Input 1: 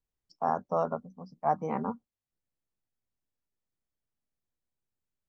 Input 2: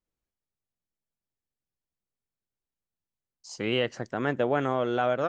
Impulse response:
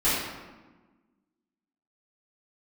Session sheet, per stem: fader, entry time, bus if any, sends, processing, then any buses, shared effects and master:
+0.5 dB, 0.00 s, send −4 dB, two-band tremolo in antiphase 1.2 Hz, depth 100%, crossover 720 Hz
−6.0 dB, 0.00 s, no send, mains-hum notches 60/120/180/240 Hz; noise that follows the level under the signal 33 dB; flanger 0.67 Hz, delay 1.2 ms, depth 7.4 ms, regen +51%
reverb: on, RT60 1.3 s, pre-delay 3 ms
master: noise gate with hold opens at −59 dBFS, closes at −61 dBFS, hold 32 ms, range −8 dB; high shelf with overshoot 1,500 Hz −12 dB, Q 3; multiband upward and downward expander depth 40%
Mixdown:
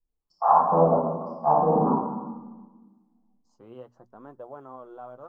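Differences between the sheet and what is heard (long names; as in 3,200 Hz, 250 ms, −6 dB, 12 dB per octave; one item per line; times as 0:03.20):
stem 2 −6.0 dB → −14.5 dB
master: missing multiband upward and downward expander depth 40%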